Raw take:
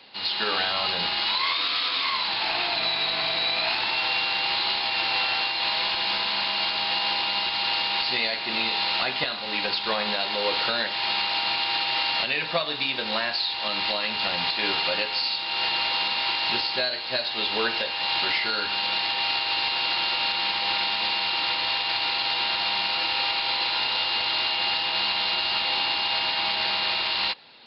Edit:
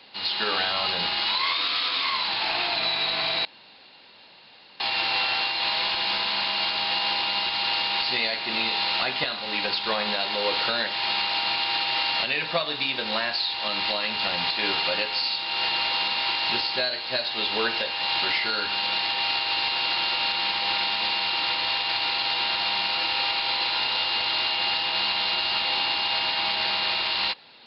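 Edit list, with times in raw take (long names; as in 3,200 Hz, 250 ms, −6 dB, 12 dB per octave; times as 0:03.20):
0:03.45–0:04.80: fill with room tone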